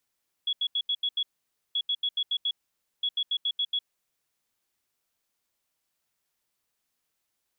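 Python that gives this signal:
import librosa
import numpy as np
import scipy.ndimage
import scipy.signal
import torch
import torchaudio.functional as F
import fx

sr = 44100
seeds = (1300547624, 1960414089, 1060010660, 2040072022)

y = fx.beep_pattern(sr, wave='sine', hz=3360.0, on_s=0.06, off_s=0.08, beeps=6, pause_s=0.52, groups=3, level_db=-24.0)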